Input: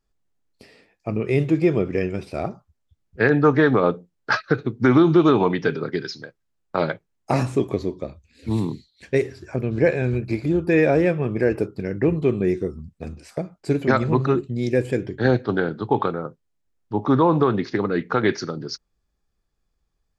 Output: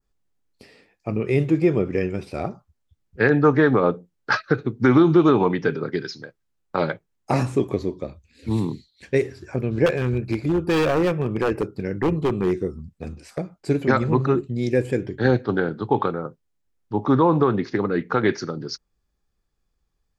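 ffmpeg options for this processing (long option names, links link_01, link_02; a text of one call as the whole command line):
ffmpeg -i in.wav -filter_complex "[0:a]asettb=1/sr,asplit=3[link_01][link_02][link_03];[link_01]atrim=end=9.864[link_04];[link_02]atrim=start=9.86:end=13.56,asetpts=PTS-STARTPTS,afade=type=in:duration=0.004:curve=qsin,afade=type=out:start_time=3.696:duration=0.004:curve=qsin,aeval=exprs='0.2*(abs(mod(val(0)/0.2+3,4)-2)-1)':channel_layout=same[link_05];[link_03]atrim=start=13.556[link_06];[link_04][link_05]acrossfade=duration=0.004:curve1=hsin:curve2=qsin[link_07];[link_07][link_06]acrossfade=duration=0.004:curve1=qsin:curve2=hsin,bandreject=frequency=650:width=17,adynamicequalizer=threshold=0.00794:dfrequency=3800:dqfactor=0.98:tfrequency=3800:tqfactor=0.98:attack=5:release=100:ratio=0.375:range=3:mode=cutabove:tftype=bell" out.wav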